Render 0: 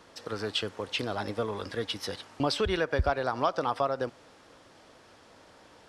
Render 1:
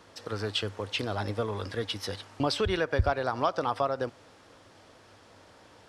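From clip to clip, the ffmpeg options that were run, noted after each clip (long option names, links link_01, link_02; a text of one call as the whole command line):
ffmpeg -i in.wav -af "equalizer=frequency=100:width_type=o:width=0.3:gain=8.5" out.wav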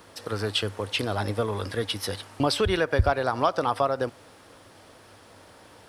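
ffmpeg -i in.wav -af "aexciter=amount=1.3:drive=9.7:freq=8900,volume=4dB" out.wav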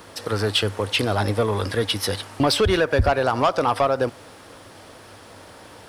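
ffmpeg -i in.wav -af "asoftclip=type=tanh:threshold=-18dB,volume=7dB" out.wav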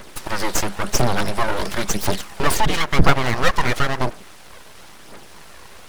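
ffmpeg -i in.wav -af "aphaser=in_gain=1:out_gain=1:delay=2.2:decay=0.57:speed=0.97:type=triangular,aeval=exprs='abs(val(0))':channel_layout=same,volume=2.5dB" out.wav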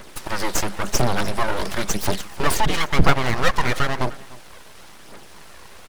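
ffmpeg -i in.wav -af "aecho=1:1:300:0.0944,volume=-1.5dB" out.wav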